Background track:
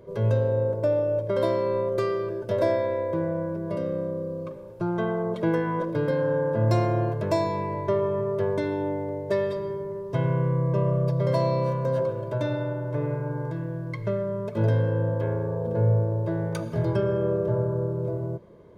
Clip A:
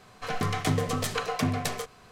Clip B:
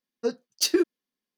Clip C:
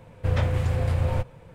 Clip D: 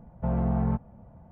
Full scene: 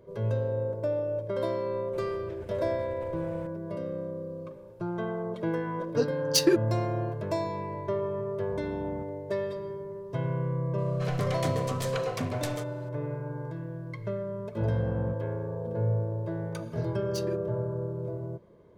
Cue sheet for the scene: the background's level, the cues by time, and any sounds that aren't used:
background track -6 dB
1.93 add C -9 dB + negative-ratio compressor -35 dBFS
5.73 add B
8.27 add D -16.5 dB
10.78 add A -6 dB
14.37 add D -10.5 dB
16.53 add B -16.5 dB

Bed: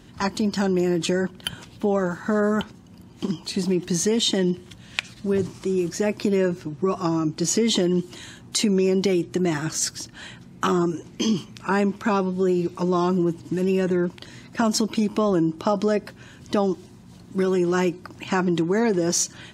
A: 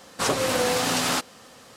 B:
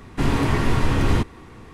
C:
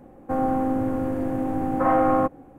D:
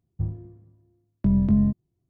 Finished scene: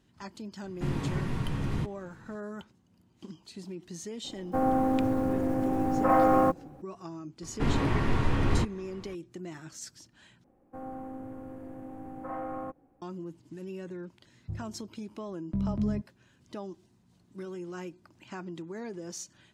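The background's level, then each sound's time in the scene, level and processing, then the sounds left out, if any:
bed -18.5 dB
0.63 add B -15.5 dB + bell 160 Hz +12 dB
4.24 add C -2.5 dB + block floating point 7-bit
7.42 add B -6.5 dB + high shelf 6000 Hz -12 dB
10.44 replace with C -17.5 dB
14.29 add D -10 dB
not used: A

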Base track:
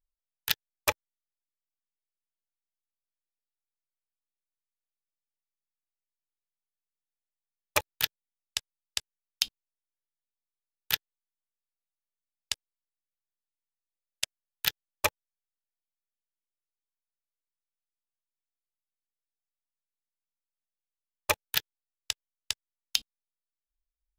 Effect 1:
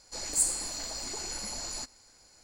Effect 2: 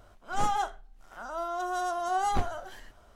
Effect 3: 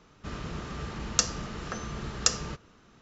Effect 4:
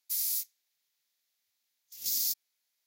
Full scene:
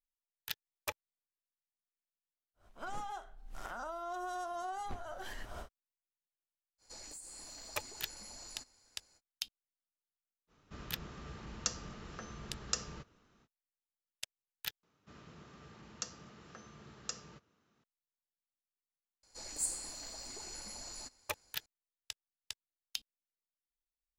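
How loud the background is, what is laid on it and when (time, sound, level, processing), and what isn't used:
base track -12.5 dB
2.54 add 2 -15 dB, fades 0.10 s + recorder AGC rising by 63 dB/s
6.78 add 1 -9.5 dB, fades 0.05 s + compressor 16:1, threshold -36 dBFS
10.47 add 3 -11 dB, fades 0.05 s
14.83 replace with 3 -17 dB + HPF 100 Hz
19.23 add 1 -9.5 dB
not used: 4

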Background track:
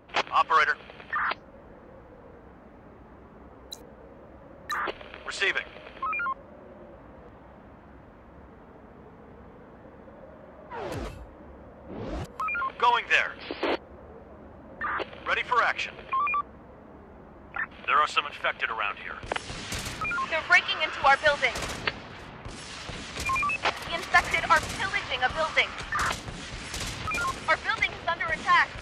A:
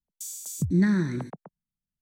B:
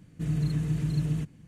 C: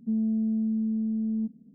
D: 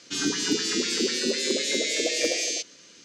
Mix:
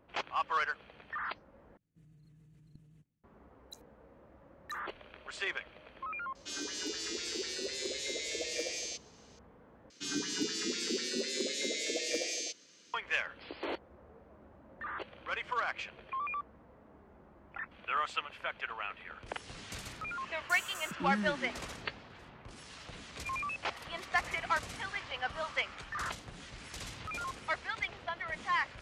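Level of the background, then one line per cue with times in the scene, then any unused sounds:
background track -10.5 dB
1.77 replace with B -14.5 dB + level quantiser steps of 23 dB
6.35 add D -11.5 dB + HPF 330 Hz 24 dB/oct
9.9 replace with D -9.5 dB
20.29 add A -10.5 dB + steep high-pass 200 Hz
not used: C

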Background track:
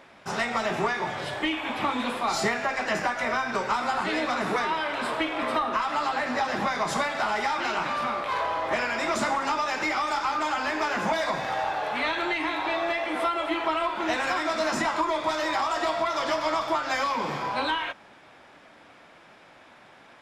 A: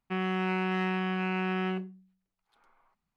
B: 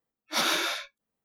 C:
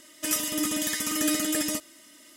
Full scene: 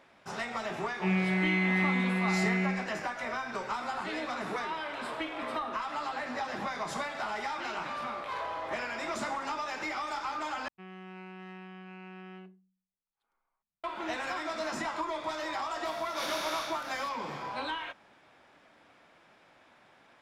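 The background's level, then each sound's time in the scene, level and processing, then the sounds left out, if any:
background track -8.5 dB
0.91 add A -3 dB + flutter echo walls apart 3.6 m, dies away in 1.1 s
10.68 replace with A -16.5 dB
15.85 add B -15 dB + per-bin compression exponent 0.2
not used: C

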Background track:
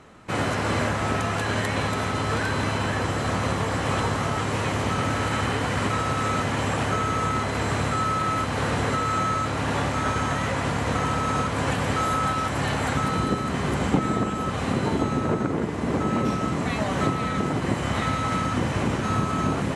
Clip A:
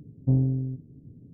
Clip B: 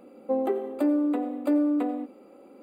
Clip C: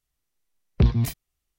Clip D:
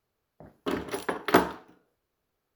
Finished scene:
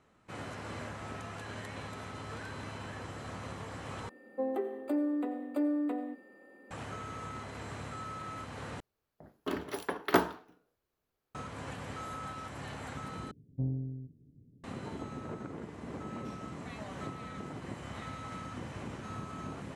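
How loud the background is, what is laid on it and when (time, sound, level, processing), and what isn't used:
background track -17.5 dB
4.09 replace with B -7.5 dB + whine 1800 Hz -52 dBFS
8.8 replace with D -5 dB
13.31 replace with A -11.5 dB
not used: C

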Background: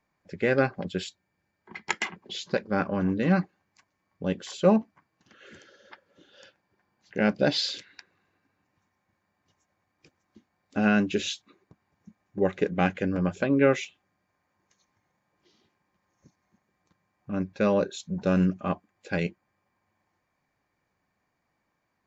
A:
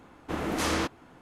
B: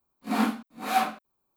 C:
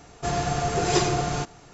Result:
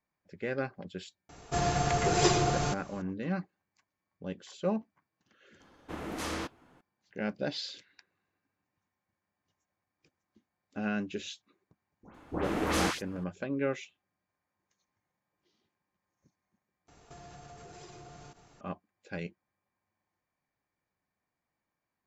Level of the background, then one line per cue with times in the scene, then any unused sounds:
background -10.5 dB
1.29 add C -3 dB
5.6 add A -8 dB
12.03 add A -1.5 dB + dispersion highs, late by 0.121 s, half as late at 1800 Hz
16.88 replace with C -10.5 dB + compressor 10:1, threshold -36 dBFS
not used: B

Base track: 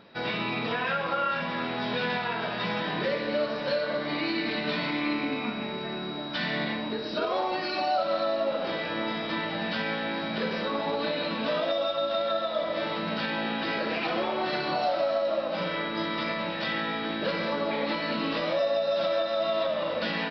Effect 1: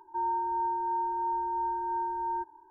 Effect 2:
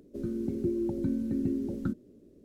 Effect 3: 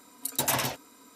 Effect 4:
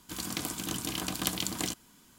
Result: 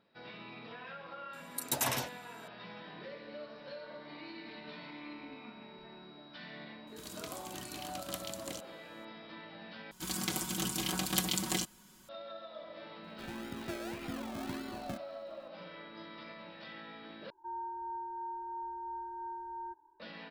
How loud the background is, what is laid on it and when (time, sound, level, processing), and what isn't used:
base track -18.5 dB
1.33 add 3 -5.5 dB
3.62 add 1 -8 dB + spectral noise reduction 23 dB
6.87 add 4 -11 dB
9.91 replace with 4 -2 dB + comb 5.4 ms, depth 71%
13.04 add 2 -11.5 dB + decimation with a swept rate 36×, swing 60% 1.7 Hz
17.3 replace with 1 -10.5 dB

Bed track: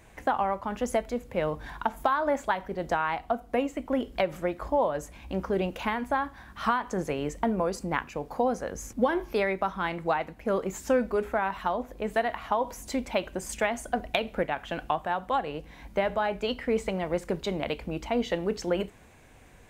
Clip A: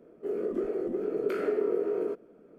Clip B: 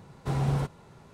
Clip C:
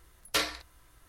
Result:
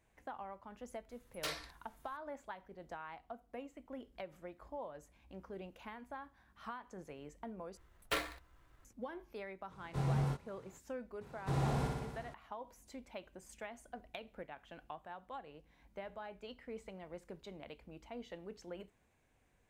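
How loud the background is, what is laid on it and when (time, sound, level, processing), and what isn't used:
bed track -20 dB
1.09 add C -9.5 dB + soft clip -24.5 dBFS
7.77 replace with C -5 dB + median filter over 9 samples
9.68 add B -10 dB, fades 0.05 s + doubler 23 ms -2 dB
11.21 add B -6.5 dB + flutter echo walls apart 10.3 m, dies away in 1.3 s
not used: A

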